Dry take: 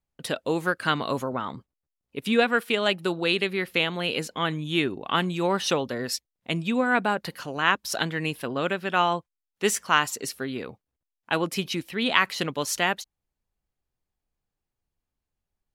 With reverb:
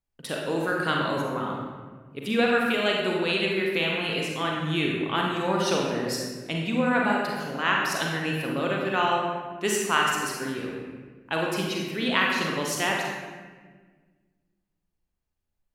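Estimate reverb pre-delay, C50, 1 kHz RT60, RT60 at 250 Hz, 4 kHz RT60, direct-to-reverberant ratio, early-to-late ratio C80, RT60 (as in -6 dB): 37 ms, 0.0 dB, 1.3 s, 2.2 s, 0.95 s, -2.0 dB, 2.5 dB, 1.5 s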